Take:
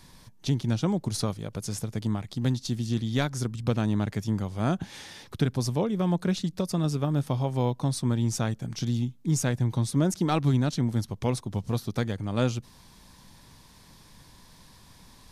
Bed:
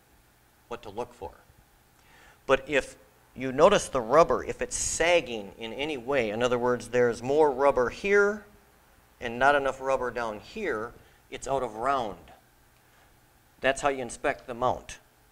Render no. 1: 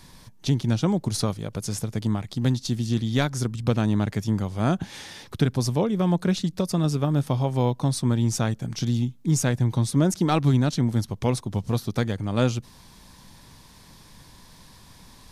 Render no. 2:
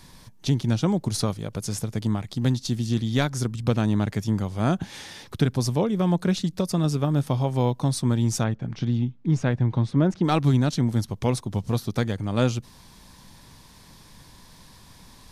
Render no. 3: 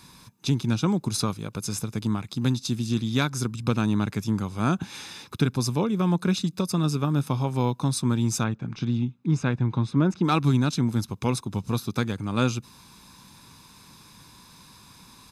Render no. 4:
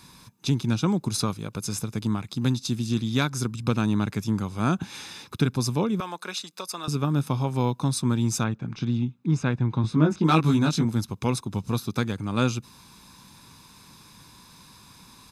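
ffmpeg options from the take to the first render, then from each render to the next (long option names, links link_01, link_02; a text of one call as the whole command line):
ffmpeg -i in.wav -af "volume=3.5dB" out.wav
ffmpeg -i in.wav -filter_complex "[0:a]asplit=3[link_01][link_02][link_03];[link_01]afade=type=out:start_time=8.43:duration=0.02[link_04];[link_02]lowpass=2700,afade=type=in:start_time=8.43:duration=0.02,afade=type=out:start_time=10.23:duration=0.02[link_05];[link_03]afade=type=in:start_time=10.23:duration=0.02[link_06];[link_04][link_05][link_06]amix=inputs=3:normalize=0" out.wav
ffmpeg -i in.wav -af "highpass=frequency=200:poles=1,aecho=1:1:0.8:0.51" out.wav
ffmpeg -i in.wav -filter_complex "[0:a]asettb=1/sr,asplit=3[link_01][link_02][link_03];[link_01]atrim=end=6.004[link_04];[link_02]atrim=start=6:end=6.88,asetpts=PTS-STARTPTS,afade=type=in:duration=0.004:curve=qsin,afade=type=out:start_time=0.876:duration=0.004:curve=qsin,highpass=690[link_05];[link_03]atrim=start=6.876[link_06];[link_04][link_05]acrossfade=duration=0.004:curve1=hsin:curve2=qsin[link_07];[link_07][link_06]acrossfade=duration=0.004:curve1=qsin:curve2=hsin,asettb=1/sr,asplit=3[link_08][link_09][link_10];[link_08]atrim=end=9.824[link_11];[link_09]atrim=start=9.82:end=10.85,asetpts=PTS-STARTPTS,afade=type=in:duration=0.004:curve=qsin,afade=type=out:start_time=1.026:duration=0.004:curve=qsin,asplit=2[link_12][link_13];[link_13]adelay=19,volume=-2.5dB[link_14];[link_12][link_14]amix=inputs=2:normalize=0,atrim=end_sample=45423[link_15];[link_10]atrim=start=10.846[link_16];[link_11][link_15]acrossfade=duration=0.004:curve1=hsin:curve2=qsin[link_17];[link_17][link_16]acrossfade=duration=0.004:curve1=qsin:curve2=hsin" out.wav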